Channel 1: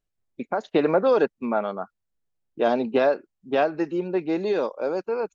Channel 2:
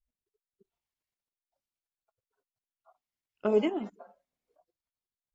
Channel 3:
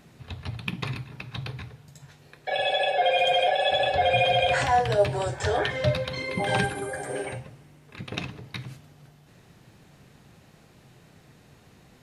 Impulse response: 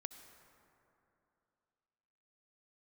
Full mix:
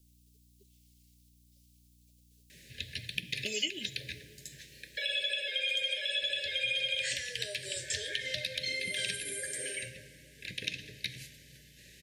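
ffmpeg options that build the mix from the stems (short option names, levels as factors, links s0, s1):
-filter_complex "[1:a]aexciter=amount=14.3:drive=4.1:freq=2500,volume=0.841,asplit=2[s0][s1];[s1]volume=0.299[s2];[2:a]tiltshelf=f=970:g=-9,adelay=2500,volume=0.631,asplit=2[s3][s4];[s4]volume=0.631[s5];[s3]aeval=exprs='val(0)+0.000708*(sin(2*PI*60*n/s)+sin(2*PI*2*60*n/s)/2+sin(2*PI*3*60*n/s)/3+sin(2*PI*4*60*n/s)/4+sin(2*PI*5*60*n/s)/5)':c=same,acompressor=threshold=0.0178:ratio=2,volume=1[s6];[3:a]atrim=start_sample=2205[s7];[s2][s5]amix=inputs=2:normalize=0[s8];[s8][s7]afir=irnorm=-1:irlink=0[s9];[s0][s6][s9]amix=inputs=3:normalize=0,acrossover=split=920|2300[s10][s11][s12];[s10]acompressor=threshold=0.00631:ratio=4[s13];[s11]acompressor=threshold=0.00562:ratio=4[s14];[s12]acompressor=threshold=0.0282:ratio=4[s15];[s13][s14][s15]amix=inputs=3:normalize=0,asuperstop=centerf=990:order=20:qfactor=0.99"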